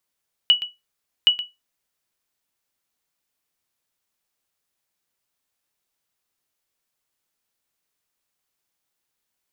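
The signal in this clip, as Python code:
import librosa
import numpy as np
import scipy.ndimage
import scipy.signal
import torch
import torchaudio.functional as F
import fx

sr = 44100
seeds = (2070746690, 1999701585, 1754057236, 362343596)

y = fx.sonar_ping(sr, hz=2940.0, decay_s=0.2, every_s=0.77, pings=2, echo_s=0.12, echo_db=-14.0, level_db=-6.5)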